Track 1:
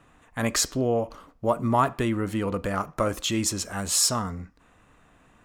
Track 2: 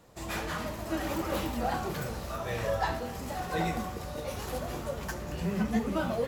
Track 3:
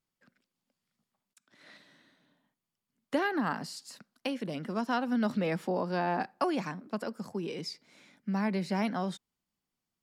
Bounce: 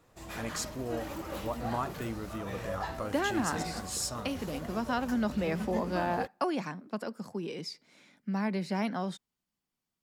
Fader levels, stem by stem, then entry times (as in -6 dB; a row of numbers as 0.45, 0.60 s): -12.5, -7.0, -1.0 dB; 0.00, 0.00, 0.00 s